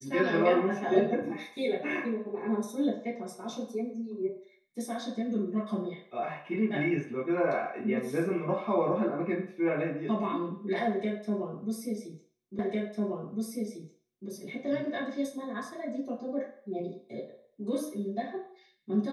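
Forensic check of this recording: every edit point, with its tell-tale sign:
0:12.59: the same again, the last 1.7 s

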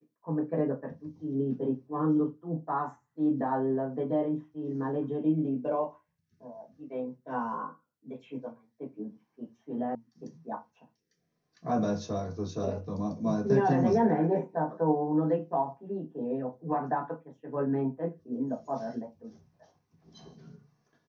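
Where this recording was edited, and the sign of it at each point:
0:09.95: cut off before it has died away

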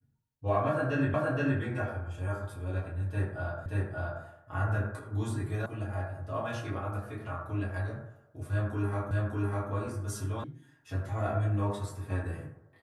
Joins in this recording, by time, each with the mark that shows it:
0:01.14: the same again, the last 0.47 s
0:03.66: the same again, the last 0.58 s
0:05.66: cut off before it has died away
0:09.11: the same again, the last 0.6 s
0:10.44: cut off before it has died away

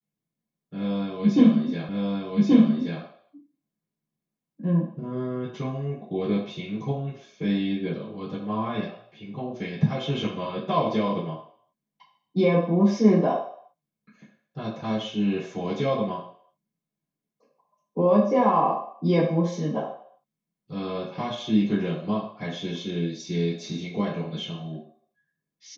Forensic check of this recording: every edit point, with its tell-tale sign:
0:01.89: the same again, the last 1.13 s

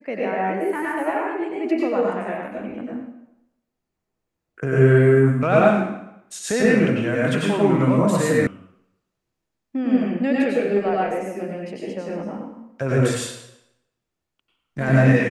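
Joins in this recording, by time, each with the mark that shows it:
0:08.47: cut off before it has died away

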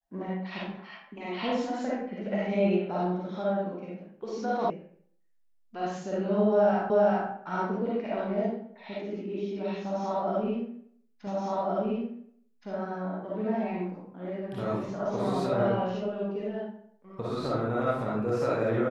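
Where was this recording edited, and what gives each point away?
0:04.70: cut off before it has died away
0:06.90: the same again, the last 0.39 s
0:11.27: the same again, the last 1.42 s

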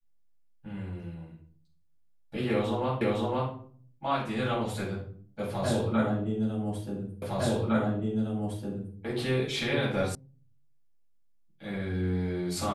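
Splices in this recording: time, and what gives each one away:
0:03.01: the same again, the last 0.51 s
0:07.22: the same again, the last 1.76 s
0:10.15: cut off before it has died away

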